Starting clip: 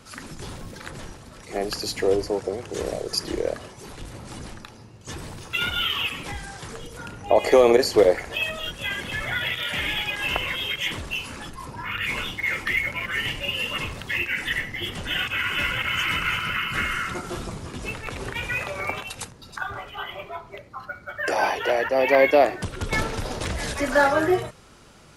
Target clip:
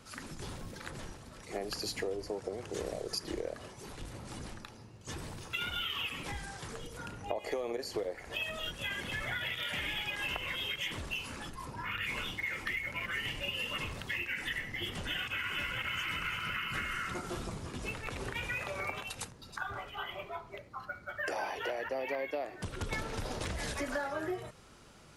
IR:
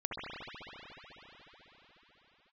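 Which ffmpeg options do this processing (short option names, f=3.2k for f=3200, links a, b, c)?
-af "acompressor=threshold=-26dB:ratio=10,volume=-6.5dB"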